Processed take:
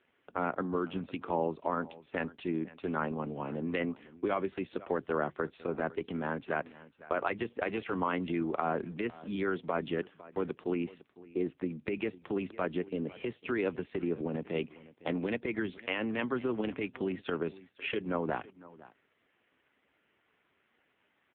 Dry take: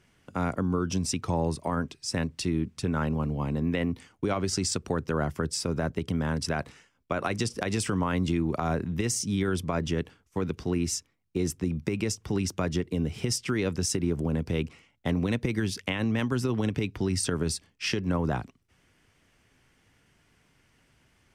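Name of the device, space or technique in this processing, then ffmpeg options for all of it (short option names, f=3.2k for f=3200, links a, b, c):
satellite phone: -af "highpass=300,lowpass=3.1k,aecho=1:1:504:0.112" -ar 8000 -c:a libopencore_amrnb -b:a 5900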